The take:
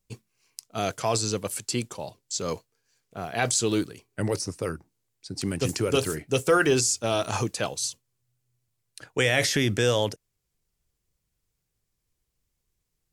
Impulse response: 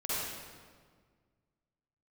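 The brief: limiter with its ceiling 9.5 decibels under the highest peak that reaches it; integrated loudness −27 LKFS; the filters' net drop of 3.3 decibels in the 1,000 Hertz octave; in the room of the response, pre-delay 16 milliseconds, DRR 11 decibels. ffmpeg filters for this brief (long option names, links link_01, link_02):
-filter_complex "[0:a]equalizer=frequency=1000:width_type=o:gain=-5,alimiter=limit=-19dB:level=0:latency=1,asplit=2[link_01][link_02];[1:a]atrim=start_sample=2205,adelay=16[link_03];[link_02][link_03]afir=irnorm=-1:irlink=0,volume=-17.5dB[link_04];[link_01][link_04]amix=inputs=2:normalize=0,volume=3.5dB"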